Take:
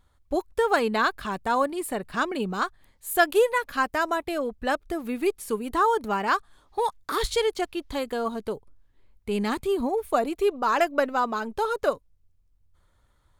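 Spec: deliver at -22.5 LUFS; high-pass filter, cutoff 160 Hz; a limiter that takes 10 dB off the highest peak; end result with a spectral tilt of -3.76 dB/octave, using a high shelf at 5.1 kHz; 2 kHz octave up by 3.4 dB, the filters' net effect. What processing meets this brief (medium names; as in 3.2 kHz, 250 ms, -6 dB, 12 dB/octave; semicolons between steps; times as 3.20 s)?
high-pass 160 Hz; peaking EQ 2 kHz +4 dB; treble shelf 5.1 kHz +4.5 dB; trim +5 dB; peak limiter -10.5 dBFS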